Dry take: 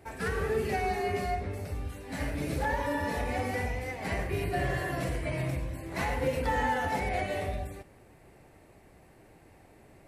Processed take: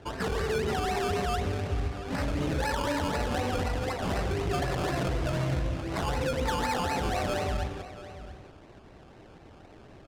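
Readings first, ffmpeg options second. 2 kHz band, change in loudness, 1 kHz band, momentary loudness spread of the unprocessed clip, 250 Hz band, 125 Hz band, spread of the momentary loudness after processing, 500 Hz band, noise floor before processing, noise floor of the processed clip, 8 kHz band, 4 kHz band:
-1.0 dB, +2.0 dB, +1.0 dB, 8 LU, +3.5 dB, +3.0 dB, 5 LU, +1.5 dB, -57 dBFS, -52 dBFS, +5.0 dB, +7.0 dB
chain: -filter_complex "[0:a]alimiter=level_in=2.5dB:limit=-24dB:level=0:latency=1:release=32,volume=-2.5dB,acrusher=samples=18:mix=1:aa=0.000001:lfo=1:lforange=10.8:lforate=4,asplit=2[a][b];[b]aecho=0:1:683:0.2[c];[a][c]amix=inputs=2:normalize=0,adynamicsmooth=sensitivity=7.5:basefreq=5.6k,volume=5.5dB"

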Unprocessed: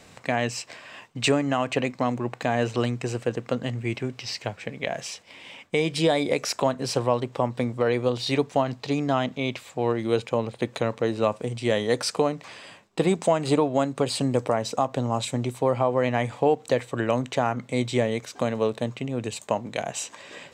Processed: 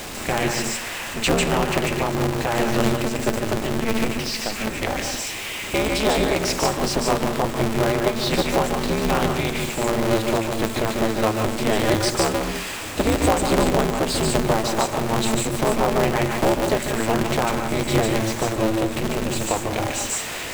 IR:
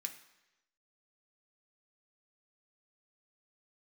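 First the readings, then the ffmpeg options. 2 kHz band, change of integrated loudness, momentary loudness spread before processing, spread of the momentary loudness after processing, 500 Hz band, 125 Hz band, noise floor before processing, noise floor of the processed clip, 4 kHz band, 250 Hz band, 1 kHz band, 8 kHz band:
+6.5 dB, +4.0 dB, 9 LU, 5 LU, +2.5 dB, +3.5 dB, -52 dBFS, -31 dBFS, +6.0 dB, +4.5 dB, +5.0 dB, +9.5 dB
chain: -filter_complex "[0:a]aeval=exprs='val(0)+0.5*0.0376*sgn(val(0))':c=same,asplit=2[a][b];[1:a]atrim=start_sample=2205,lowshelf=f=290:g=11.5,adelay=146[c];[b][c]afir=irnorm=-1:irlink=0,volume=-0.5dB[d];[a][d]amix=inputs=2:normalize=0,aeval=exprs='val(0)*sgn(sin(2*PI*110*n/s))':c=same"

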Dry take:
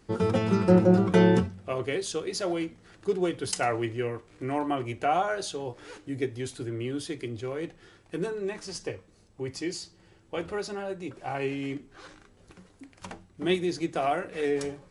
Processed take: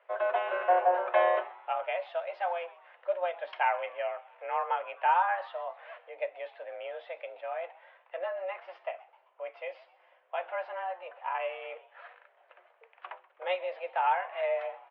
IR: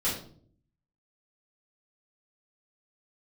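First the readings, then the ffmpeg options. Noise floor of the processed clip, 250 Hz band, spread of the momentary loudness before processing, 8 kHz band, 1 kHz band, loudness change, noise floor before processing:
-66 dBFS, under -30 dB, 17 LU, under -40 dB, +3.5 dB, -3.5 dB, -59 dBFS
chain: -filter_complex "[0:a]aemphasis=mode=reproduction:type=bsi,highpass=f=460:t=q:w=0.5412,highpass=f=460:t=q:w=1.307,lowpass=f=2.8k:t=q:w=0.5176,lowpass=f=2.8k:t=q:w=0.7071,lowpass=f=2.8k:t=q:w=1.932,afreqshift=180,asplit=4[a][b][c][d];[b]adelay=129,afreqshift=120,volume=-20.5dB[e];[c]adelay=258,afreqshift=240,volume=-27.6dB[f];[d]adelay=387,afreqshift=360,volume=-34.8dB[g];[a][e][f][g]amix=inputs=4:normalize=0"

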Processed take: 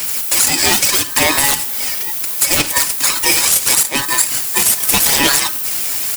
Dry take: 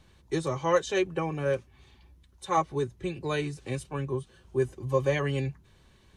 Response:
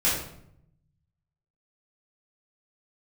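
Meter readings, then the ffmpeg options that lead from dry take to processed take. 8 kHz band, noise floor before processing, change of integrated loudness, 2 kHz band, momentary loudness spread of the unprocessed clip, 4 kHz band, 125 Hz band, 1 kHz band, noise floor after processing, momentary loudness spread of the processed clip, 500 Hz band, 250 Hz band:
+35.0 dB, -60 dBFS, +18.0 dB, +19.5 dB, 8 LU, +27.0 dB, -0.5 dB, +10.5 dB, -22 dBFS, 6 LU, +1.5 dB, +7.5 dB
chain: -filter_complex "[0:a]aexciter=amount=2:drive=6.6:freq=3.2k,highshelf=f=9.3k:g=11,asplit=2[a][b];[b]adelay=1341,volume=-30dB,highshelf=f=4k:g=-30.2[c];[a][c]amix=inputs=2:normalize=0,aeval=exprs='0.0708*(abs(mod(val(0)/0.0708+3,4)-2)-1)':c=same,aemphasis=mode=production:type=riaa,acompressor=threshold=-29dB:ratio=4,asplit=2[d][e];[1:a]atrim=start_sample=2205,adelay=11[f];[e][f]afir=irnorm=-1:irlink=0,volume=-28dB[g];[d][g]amix=inputs=2:normalize=0,aphaser=in_gain=1:out_gain=1:delay=1.9:decay=0.56:speed=0.76:type=sinusoidal,highpass=f=950:p=1,acontrast=82,alimiter=level_in=17dB:limit=-1dB:release=50:level=0:latency=1,aeval=exprs='val(0)*sgn(sin(2*PI*1400*n/s))':c=same,volume=-1dB"

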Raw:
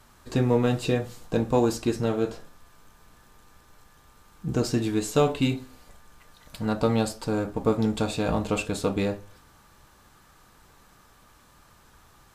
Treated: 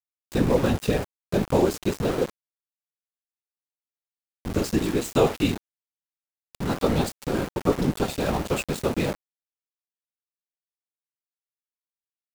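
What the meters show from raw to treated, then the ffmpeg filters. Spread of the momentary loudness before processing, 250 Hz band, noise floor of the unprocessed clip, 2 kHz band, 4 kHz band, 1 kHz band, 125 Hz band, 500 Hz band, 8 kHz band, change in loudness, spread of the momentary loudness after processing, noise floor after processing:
8 LU, +0.5 dB, -57 dBFS, +2.0 dB, +1.5 dB, +1.0 dB, 0.0 dB, +1.0 dB, +1.0 dB, +1.0 dB, 8 LU, under -85 dBFS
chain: -af "afftfilt=real='hypot(re,im)*cos(2*PI*random(0))':imag='hypot(re,im)*sin(2*PI*random(1))':win_size=512:overlap=0.75,aeval=exprs='val(0)*gte(abs(val(0)),0.0158)':c=same,volume=7dB"

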